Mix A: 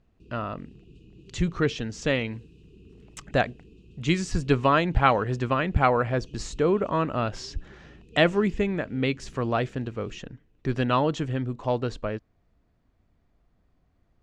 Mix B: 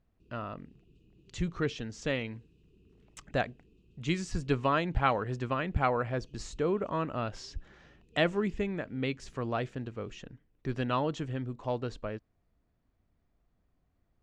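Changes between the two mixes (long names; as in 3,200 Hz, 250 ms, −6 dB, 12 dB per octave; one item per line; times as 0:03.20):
speech −7.0 dB
background −11.5 dB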